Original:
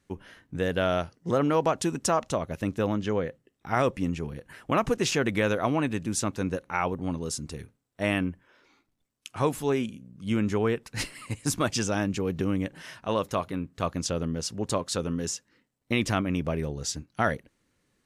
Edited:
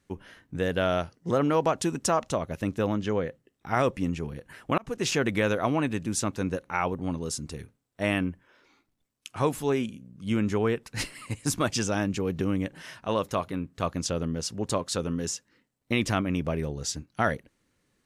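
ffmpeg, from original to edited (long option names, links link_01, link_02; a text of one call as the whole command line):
ffmpeg -i in.wav -filter_complex "[0:a]asplit=2[link_01][link_02];[link_01]atrim=end=4.78,asetpts=PTS-STARTPTS,afade=type=out:start_time=4.776:duration=0.004:curve=hsin[link_03];[link_02]atrim=start=4.78,asetpts=PTS-STARTPTS,afade=type=in:duration=0.32[link_04];[link_03][link_04]concat=n=2:v=0:a=1" out.wav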